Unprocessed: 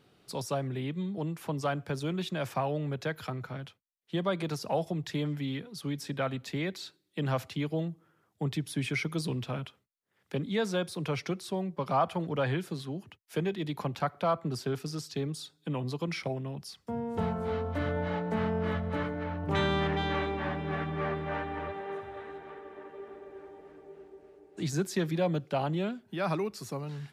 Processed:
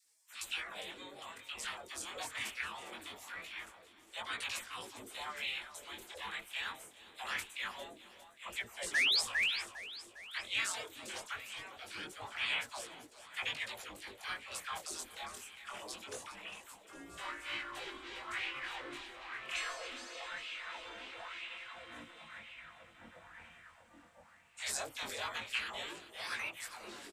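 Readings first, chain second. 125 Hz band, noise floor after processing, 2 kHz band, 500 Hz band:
-31.0 dB, -62 dBFS, +1.5 dB, -18.5 dB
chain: spectral gate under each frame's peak -25 dB weak; peaking EQ 8 kHz +9.5 dB 0.54 oct; painted sound rise, 8.93–9.20 s, 1.6–5.4 kHz -33 dBFS; phase dispersion lows, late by 59 ms, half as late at 700 Hz; chorus 0.23 Hz, delay 17 ms, depth 7.3 ms; feedback delay 404 ms, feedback 60%, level -13 dB; sweeping bell 1 Hz 290–2700 Hz +12 dB; trim +6.5 dB

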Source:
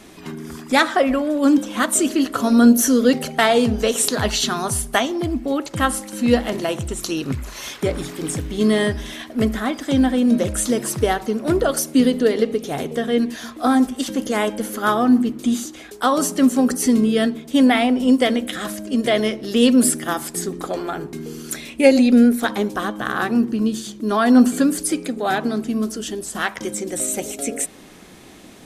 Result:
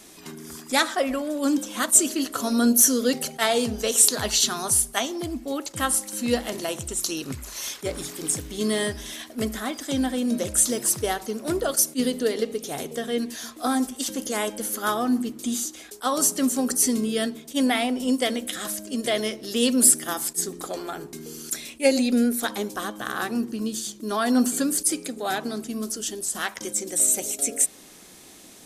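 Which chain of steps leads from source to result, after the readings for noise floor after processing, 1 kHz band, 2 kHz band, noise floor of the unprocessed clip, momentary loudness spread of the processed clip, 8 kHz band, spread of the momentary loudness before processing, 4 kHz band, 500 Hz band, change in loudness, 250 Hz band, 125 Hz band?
-47 dBFS, -6.5 dB, -6.0 dB, -41 dBFS, 13 LU, +3.5 dB, 12 LU, -2.0 dB, -7.0 dB, -4.5 dB, -8.5 dB, -10.0 dB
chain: tone controls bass -4 dB, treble +11 dB; attacks held to a fixed rise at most 410 dB/s; trim -6.5 dB

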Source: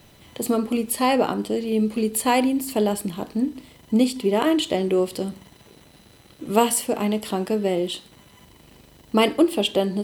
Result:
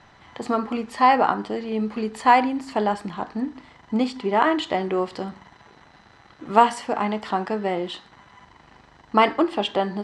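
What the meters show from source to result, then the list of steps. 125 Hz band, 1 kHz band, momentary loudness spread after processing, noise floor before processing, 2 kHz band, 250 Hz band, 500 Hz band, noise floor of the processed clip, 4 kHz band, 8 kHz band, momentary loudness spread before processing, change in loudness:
-4.0 dB, +6.5 dB, 12 LU, -52 dBFS, +3.5 dB, -4.0 dB, -2.5 dB, -53 dBFS, -4.0 dB, -16.0 dB, 9 LU, 0.0 dB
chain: low-pass 6.3 kHz 24 dB/octave; high-order bell 1.2 kHz +11.5 dB; trim -4 dB

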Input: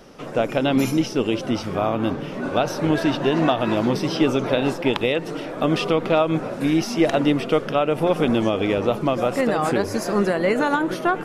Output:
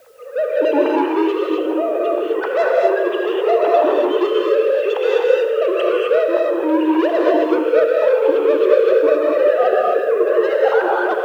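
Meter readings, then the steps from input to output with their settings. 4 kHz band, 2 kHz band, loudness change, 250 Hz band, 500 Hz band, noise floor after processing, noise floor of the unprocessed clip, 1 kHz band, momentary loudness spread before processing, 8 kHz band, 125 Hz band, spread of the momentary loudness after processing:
-3.5 dB, +2.5 dB, +5.0 dB, -0.5 dB, +8.5 dB, -22 dBFS, -32 dBFS, +3.5 dB, 4 LU, under -10 dB, under -30 dB, 5 LU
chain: formants replaced by sine waves; band-stop 2.2 kHz, Q 6.3; in parallel at -1.5 dB: compression, threshold -28 dBFS, peak gain reduction 17.5 dB; on the sum: rotary cabinet horn 0.7 Hz, later 6.7 Hz, at 7.99 s; saturation -20 dBFS, distortion -8 dB; high-pass 220 Hz 24 dB/octave; gated-style reverb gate 280 ms rising, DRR -2.5 dB; dynamic bell 820 Hz, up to +7 dB, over -36 dBFS, Q 1.4; on a send: multi-head delay 80 ms, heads first and second, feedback 41%, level -14.5 dB; on the sum: word length cut 10-bit, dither triangular; trim +1.5 dB

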